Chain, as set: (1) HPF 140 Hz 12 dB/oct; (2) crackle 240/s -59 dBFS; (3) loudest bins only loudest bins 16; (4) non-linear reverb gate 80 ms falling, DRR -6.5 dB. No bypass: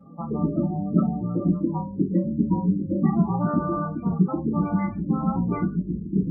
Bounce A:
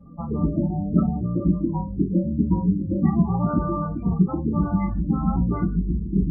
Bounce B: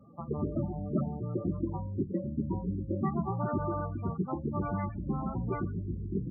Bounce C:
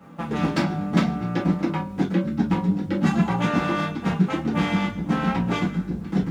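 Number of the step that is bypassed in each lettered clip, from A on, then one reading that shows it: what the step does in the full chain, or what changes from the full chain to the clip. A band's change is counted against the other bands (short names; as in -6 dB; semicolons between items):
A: 1, 125 Hz band +3.0 dB; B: 4, 250 Hz band -5.0 dB; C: 3, 2 kHz band +14.5 dB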